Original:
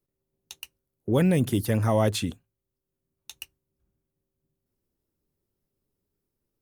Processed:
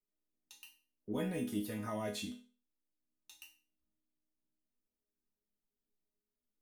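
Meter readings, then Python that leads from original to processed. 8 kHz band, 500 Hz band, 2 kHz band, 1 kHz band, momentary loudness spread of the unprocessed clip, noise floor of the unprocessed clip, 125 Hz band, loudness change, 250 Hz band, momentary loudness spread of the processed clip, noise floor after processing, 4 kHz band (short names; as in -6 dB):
-12.5 dB, -15.5 dB, -12.0 dB, -14.0 dB, 21 LU, -84 dBFS, -21.0 dB, -15.0 dB, -13.0 dB, 19 LU, under -85 dBFS, -12.0 dB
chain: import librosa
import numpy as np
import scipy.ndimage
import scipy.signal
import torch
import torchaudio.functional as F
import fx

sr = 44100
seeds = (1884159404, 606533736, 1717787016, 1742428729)

y = fx.resonator_bank(x, sr, root=56, chord='minor', decay_s=0.37)
y = F.gain(torch.from_numpy(y), 5.5).numpy()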